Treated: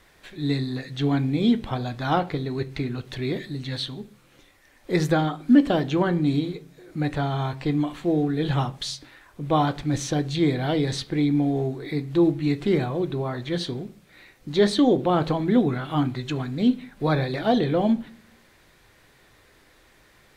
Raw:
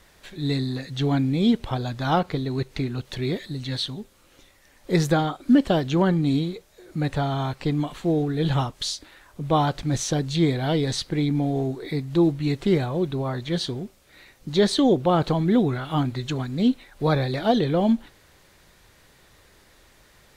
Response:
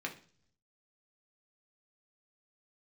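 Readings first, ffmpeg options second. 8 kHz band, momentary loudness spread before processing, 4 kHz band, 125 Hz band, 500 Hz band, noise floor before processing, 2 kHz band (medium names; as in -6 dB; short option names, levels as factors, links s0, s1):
-4.0 dB, 9 LU, -2.0 dB, -1.5 dB, -0.5 dB, -57 dBFS, +0.5 dB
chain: -filter_complex "[0:a]asplit=2[s0][s1];[1:a]atrim=start_sample=2205,lowpass=6000[s2];[s1][s2]afir=irnorm=-1:irlink=0,volume=0.531[s3];[s0][s3]amix=inputs=2:normalize=0,volume=0.668"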